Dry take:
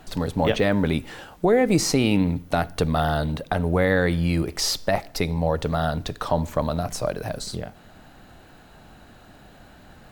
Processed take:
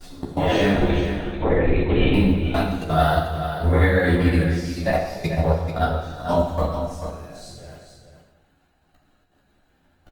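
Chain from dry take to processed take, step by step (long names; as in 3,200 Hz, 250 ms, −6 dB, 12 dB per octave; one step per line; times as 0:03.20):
random phases in long frames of 200 ms
noise gate with hold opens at −38 dBFS
output level in coarse steps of 23 dB
0:00.74–0:02.14: linear-prediction vocoder at 8 kHz whisper
multi-voice chorus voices 4, 0.63 Hz, delay 13 ms, depth 2.2 ms
on a send: single-tap delay 439 ms −9 dB
on the sum: reverb whose tail is shaped and stops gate 380 ms falling, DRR 2 dB
level +6 dB
Opus 48 kbit/s 48,000 Hz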